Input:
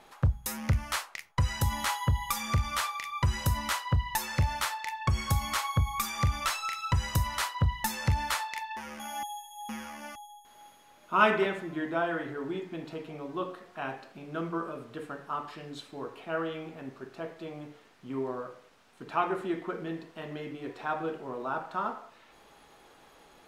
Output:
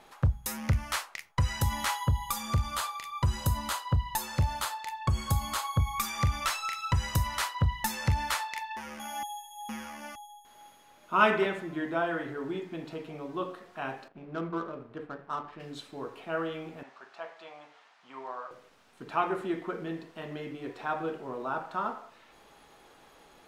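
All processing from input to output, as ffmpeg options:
-filter_complex "[0:a]asettb=1/sr,asplit=3[s0][s1][s2];[s0]atrim=end=2.034[s3];[s1]atrim=start=2.03:end=5.8,asetpts=PTS-STARTPTS,afade=t=in:d=0.004:c=qsin,afade=t=out:st=3.766:d=0.004:c=qsin,equalizer=f=2100:w=1.7:g=-7.5,bandreject=f=5600:w=8.3[s4];[s2]atrim=start=5.796[s5];[s3][s4]acrossfade=d=0.004:c1=hsin:c2=qsin[s6];[s6][s5]acrossfade=d=0.004:c1=qsin:c2=hsin,asettb=1/sr,asplit=3[s7][s8][s9];[s7]atrim=end=14.084[s10];[s8]atrim=start=14.08:end=15.6,asetpts=PTS-STARTPTS,afade=t=in:d=0.004:c=qsin,afade=t=out:st=1.516:d=0.004:c=qsin,aeval=exprs='sgn(val(0))*max(abs(val(0))-0.00112,0)':c=same,adynamicsmooth=sensitivity=6.5:basefreq=1700[s11];[s9]atrim=start=15.596[s12];[s10][s11]acrossfade=d=0.004:c1=hsin:c2=qsin[s13];[s13][s12]acrossfade=d=0.004:c1=qsin:c2=hsin,asettb=1/sr,asplit=3[s14][s15][s16];[s14]atrim=end=16.834[s17];[s15]atrim=start=16.83:end=18.51,asetpts=PTS-STARTPTS,afade=t=in:d=0.004:c=qsin,afade=t=out:st=1.676:d=0.004:c=qsin,highpass=230,lowpass=6200,lowshelf=f=530:t=q:w=1.5:g=-13[s18];[s16]atrim=start=18.506[s19];[s17][s18]acrossfade=d=0.004:c1=hsin:c2=qsin[s20];[s20][s19]acrossfade=d=0.004:c1=qsin:c2=hsin"

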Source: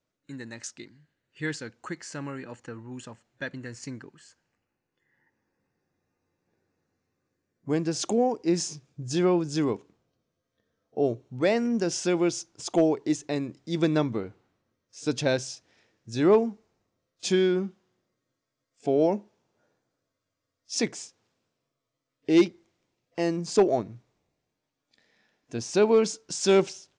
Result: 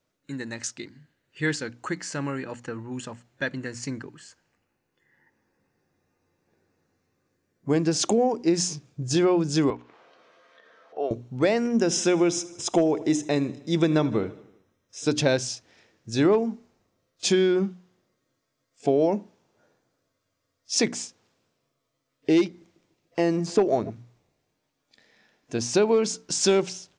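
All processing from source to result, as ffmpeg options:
-filter_complex "[0:a]asettb=1/sr,asplit=3[s0][s1][s2];[s0]atrim=end=9.704[s3];[s1]atrim=start=9.7:end=11.11,asetpts=PTS-STARTPTS,afade=t=in:d=0.004:c=qsin,afade=t=out:st=1.406:d=0.004:c=qsin,highpass=760,lowpass=2600,acompressor=mode=upward:threshold=0.00794:ratio=2.5:attack=3.2:release=140:knee=2.83:detection=peak[s4];[s2]atrim=start=11.106[s5];[s3][s4]acrossfade=d=0.004:c1=hsin:c2=qsin[s6];[s6][s5]acrossfade=d=0.004:c1=qsin:c2=hsin,asettb=1/sr,asplit=3[s7][s8][s9];[s7]atrim=end=11.714[s10];[s8]atrim=start=11.71:end=15.05,asetpts=PTS-STARTPTS,afade=t=in:d=0.004:c=qsin,afade=t=out:st=3.336:d=0.004:c=qsin,asuperstop=centerf=4500:order=12:qfactor=7.8,aecho=1:1:78|156|234|312|390:0.0944|0.0548|0.0318|0.0184|0.0107,atrim=end_sample=147294[s11];[s9]atrim=start=15.046[s12];[s10][s11]acrossfade=d=0.004:c1=hsin:c2=qsin[s13];[s13][s12]acrossfade=d=0.004:c1=qsin:c2=hsin,asettb=1/sr,asplit=3[s14][s15][s16];[s14]atrim=end=22.474[s17];[s15]atrim=start=22.47:end=23.9,asetpts=PTS-STARTPTS,afade=t=in:d=0.004:c=qsin,afade=t=out:st=1.426:d=0.004:c=qsin,acrossover=split=2700[s18][s19];[s19]acompressor=threshold=0.00794:ratio=4:attack=1:release=60[s20];[s18][s20]amix=inputs=2:normalize=0,asplit=2[s21][s22];[s22]adelay=145,lowpass=f=2300:p=1,volume=0.0794,asplit=2[s23][s24];[s24]adelay=145,lowpass=f=2300:p=1,volume=0.54,asplit=2[s25][s26];[s26]adelay=145,lowpass=f=2300:p=1,volume=0.54,asplit=2[s27][s28];[s28]adelay=145,lowpass=f=2300:p=1,volume=0.54[s29];[s21][s23][s25][s27][s29]amix=inputs=5:normalize=0,atrim=end_sample=63063[s30];[s16]atrim=start=23.896[s31];[s17][s30]acrossfade=d=0.004:c1=hsin:c2=qsin[s32];[s32][s31]acrossfade=d=0.004:c1=qsin:c2=hsin,bandreject=f=60:t=h:w=6,bandreject=f=120:t=h:w=6,bandreject=f=180:t=h:w=6,bandreject=f=240:t=h:w=6,bandreject=f=300:t=h:w=6,acompressor=threshold=0.0708:ratio=6,volume=2"

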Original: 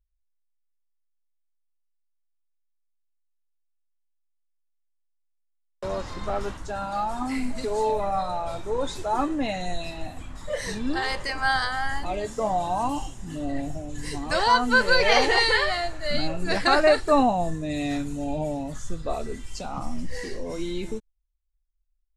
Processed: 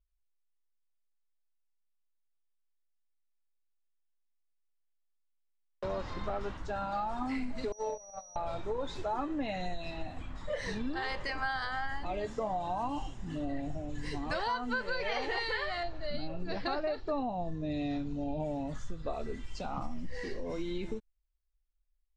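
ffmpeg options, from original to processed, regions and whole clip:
-filter_complex "[0:a]asettb=1/sr,asplit=3[s0][s1][s2];[s0]atrim=end=7.724[s3];[s1]atrim=start=7.72:end=8.36,asetpts=PTS-STARTPTS,afade=t=in:d=0.004:c=qsin,afade=t=out:st=0.636:d=0.004:c=qsin,agate=range=0.0251:threshold=0.0794:ratio=16:release=100:detection=peak,equalizer=f=560:t=o:w=0.56:g=11.5,aeval=exprs='val(0)+0.01*sin(2*PI*5800*n/s)':c=same[s4];[s2]atrim=start=8.356[s5];[s3][s4]acrossfade=d=0.004:c1=hsin:c2=qsin[s6];[s6][s5]acrossfade=d=0.004:c1=qsin:c2=hsin,asettb=1/sr,asplit=3[s7][s8][s9];[s7]atrim=end=15.834[s10];[s8]atrim=start=15.83:end=18.4,asetpts=PTS-STARTPTS,afade=t=in:d=0.004:c=qsin,afade=t=out:st=2.566:d=0.004:c=qsin,lowpass=f=5500:w=0.5412,lowpass=f=5500:w=1.3066,equalizer=f=1800:w=1:g=-7.5[s11];[s9]atrim=start=18.396[s12];[s10][s11]acrossfade=d=0.004:c1=hsin:c2=qsin[s13];[s13][s12]acrossfade=d=0.004:c1=qsin:c2=hsin,acompressor=threshold=0.0447:ratio=6,lowpass=4200,volume=0.668"

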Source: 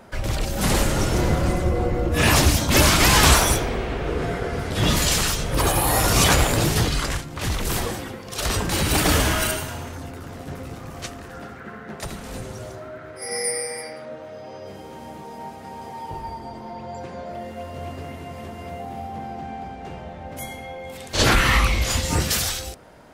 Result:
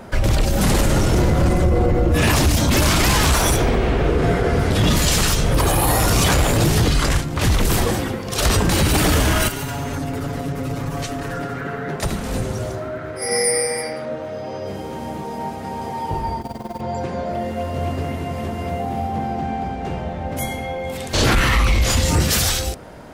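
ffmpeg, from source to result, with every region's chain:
-filter_complex "[0:a]asettb=1/sr,asplit=3[s0][s1][s2];[s0]atrim=end=9.484[s3];[s1]atrim=start=9.48:end=11.96,asetpts=PTS-STARTPTS,afade=t=in:d=0.004:c=qsin,afade=t=out:st=2.476:d=0.004:c=qsin,aecho=1:1:7.1:0.98,atrim=end_sample=109368,acompressor=threshold=0.0316:ratio=16:attack=3.2:release=140:knee=1:detection=peak[s4];[s2]atrim=start=11.956[s5];[s3][s4]acrossfade=d=0.004:c1=hsin:c2=qsin[s6];[s6][s5]acrossfade=d=0.004:c1=qsin:c2=hsin,asettb=1/sr,asplit=3[s7][s8][s9];[s7]atrim=end=16.414[s10];[s8]atrim=start=16.41:end=16.81,asetpts=PTS-STARTPTS,afade=t=in:d=0.004:c=qsin,afade=t=out:st=0.396:d=0.004:c=qsin,bandreject=f=50.24:t=h:w=4,bandreject=f=100.48:t=h:w=4,bandreject=f=150.72:t=h:w=4,bandreject=f=200.96:t=h:w=4,bandreject=f=251.2:t=h:w=4,bandreject=f=301.44:t=h:w=4,bandreject=f=351.68:t=h:w=4,bandreject=f=401.92:t=h:w=4,bandreject=f=452.16:t=h:w=4,bandreject=f=502.4:t=h:w=4,bandreject=f=552.64:t=h:w=4,bandreject=f=602.88:t=h:w=4,bandreject=f=653.12:t=h:w=4,bandreject=f=703.36:t=h:w=4,bandreject=f=753.6:t=h:w=4,bandreject=f=803.84:t=h:w=4,bandreject=f=854.08:t=h:w=4,bandreject=f=904.32:t=h:w=4,bandreject=f=954.56:t=h:w=4,acrusher=bits=4:mode=log:mix=0:aa=0.000001,tremolo=f=20:d=0.824[s11];[s9]atrim=start=16.806[s12];[s10][s11]acrossfade=d=0.004:c1=hsin:c2=qsin[s13];[s13][s12]acrossfade=d=0.004:c1=qsin:c2=hsin,lowshelf=f=500:g=4.5,acontrast=42,alimiter=level_in=2.82:limit=0.891:release=50:level=0:latency=1,volume=0.398"

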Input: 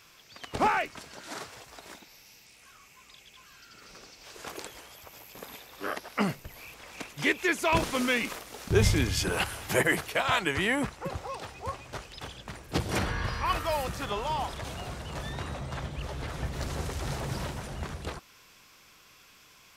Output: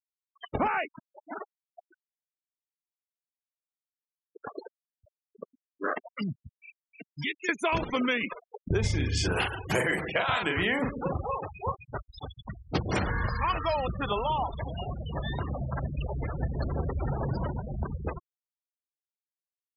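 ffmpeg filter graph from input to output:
-filter_complex "[0:a]asettb=1/sr,asplit=3[s0][s1][s2];[s0]atrim=end=6.064[s3];[s1]atrim=start=6.06:end=7.49,asetpts=PTS-STARTPTS,afade=t=in:d=0.004:c=qsin,afade=t=out:st=1.426:d=0.004:c=qsin,highpass=110,acrossover=split=160|3000[s4][s5][s6];[s5]acompressor=threshold=0.01:ratio=8:attack=3.2:release=140:knee=2.83:detection=peak[s7];[s4][s7][s6]amix=inputs=3:normalize=0[s8];[s2]atrim=start=7.486[s9];[s3][s8]acrossfade=d=0.004:c1=hsin:c2=qsin[s10];[s10][s9]acrossfade=d=0.004:c1=qsin:c2=hsin,asettb=1/sr,asplit=3[s11][s12][s13];[s11]atrim=end=8.804[s14];[s12]atrim=start=8.8:end=11.72,asetpts=PTS-STARTPTS,afade=t=in:d=0.004:c=qsin,afade=t=out:st=2.916:d=0.004:c=qsin,asplit=2[s15][s16];[s16]adelay=40,volume=0.631[s17];[s15][s17]amix=inputs=2:normalize=0,atrim=end_sample=128772,asplit=2[s18][s19];[s19]adelay=136,lowpass=f=1500:p=1,volume=0.211,asplit=2[s20][s21];[s21]adelay=136,lowpass=f=1500:p=1,volume=0.49,asplit=2[s22][s23];[s23]adelay=136,lowpass=f=1500:p=1,volume=0.49,asplit=2[s24][s25];[s25]adelay=136,lowpass=f=1500:p=1,volume=0.49,asplit=2[s26][s27];[s27]adelay=136,lowpass=f=1500:p=1,volume=0.49[s28];[s18][s20][s22][s24][s26][s28]amix=inputs=6:normalize=0,atrim=end_sample=128772[s29];[s13]atrim=start=11.716[s30];[s14][s29]acrossfade=d=0.004:c1=hsin:c2=qsin[s31];[s31][s30]acrossfade=d=0.004:c1=qsin:c2=hsin,afftfilt=real='re*gte(hypot(re,im),0.0282)':imag='im*gte(hypot(re,im),0.0282)':win_size=1024:overlap=0.75,acompressor=threshold=0.0355:ratio=6,volume=1.78"

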